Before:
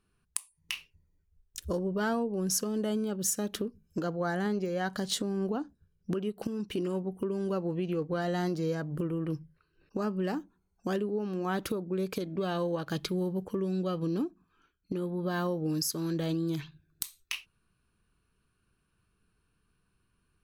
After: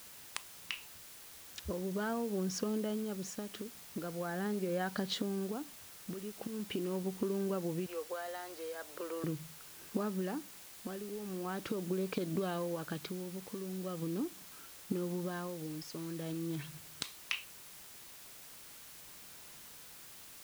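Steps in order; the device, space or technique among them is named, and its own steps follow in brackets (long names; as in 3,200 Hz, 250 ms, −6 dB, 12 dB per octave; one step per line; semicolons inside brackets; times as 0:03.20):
0:07.86–0:09.24: high-pass filter 500 Hz 24 dB per octave
medium wave at night (band-pass filter 100–3,700 Hz; downward compressor, threshold −41 dBFS, peak gain reduction 14 dB; amplitude tremolo 0.41 Hz, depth 62%; steady tone 10,000 Hz −76 dBFS; white noise bed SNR 13 dB)
level +8.5 dB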